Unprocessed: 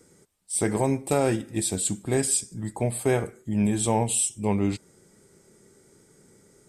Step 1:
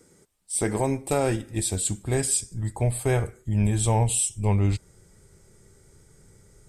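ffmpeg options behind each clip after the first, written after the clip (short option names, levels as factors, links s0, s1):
-af "asubboost=boost=11:cutoff=76"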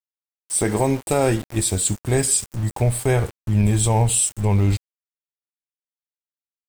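-af "aeval=exprs='val(0)*gte(abs(val(0)),0.0141)':c=same,alimiter=level_in=4.22:limit=0.891:release=50:level=0:latency=1,volume=0.447"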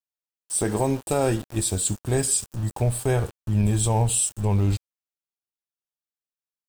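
-af "equalizer=f=2100:w=5.4:g=-8.5,volume=0.668"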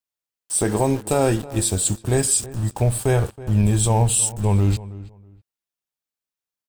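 -filter_complex "[0:a]asplit=2[s0][s1];[s1]adelay=323,lowpass=f=1900:p=1,volume=0.141,asplit=2[s2][s3];[s3]adelay=323,lowpass=f=1900:p=1,volume=0.22[s4];[s0][s2][s4]amix=inputs=3:normalize=0,volume=1.5"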